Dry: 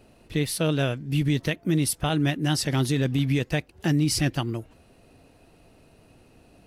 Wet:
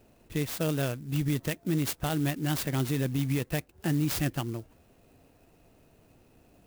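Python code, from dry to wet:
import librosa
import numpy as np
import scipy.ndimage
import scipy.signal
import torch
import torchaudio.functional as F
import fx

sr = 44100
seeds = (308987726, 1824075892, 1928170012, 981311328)

y = fx.clock_jitter(x, sr, seeds[0], jitter_ms=0.05)
y = y * librosa.db_to_amplitude(-5.0)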